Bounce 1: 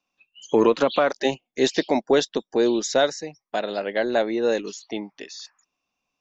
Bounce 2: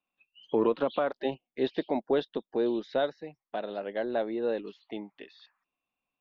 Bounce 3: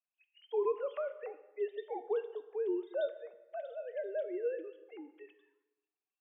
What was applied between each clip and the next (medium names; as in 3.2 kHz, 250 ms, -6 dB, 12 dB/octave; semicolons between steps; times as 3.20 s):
steep low-pass 3.6 kHz 36 dB/octave; dynamic bell 2.2 kHz, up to -7 dB, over -42 dBFS, Q 1.2; trim -7.5 dB
formants replaced by sine waves; plate-style reverb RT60 1.1 s, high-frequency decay 0.75×, DRR 10.5 dB; trim -7.5 dB